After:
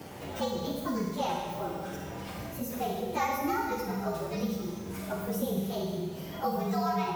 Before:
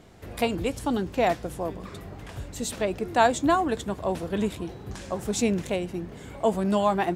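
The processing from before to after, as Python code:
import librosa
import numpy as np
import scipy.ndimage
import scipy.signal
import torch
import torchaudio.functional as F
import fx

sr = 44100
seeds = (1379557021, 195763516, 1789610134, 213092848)

y = fx.partial_stretch(x, sr, pct=117)
y = scipy.signal.sosfilt(scipy.signal.butter(2, 76.0, 'highpass', fs=sr, output='sos'), y)
y = fx.high_shelf(y, sr, hz=8000.0, db=6.0)
y = fx.rev_schroeder(y, sr, rt60_s=1.1, comb_ms=32, drr_db=0.0)
y = fx.band_squash(y, sr, depth_pct=70)
y = y * librosa.db_to_amplitude(-6.5)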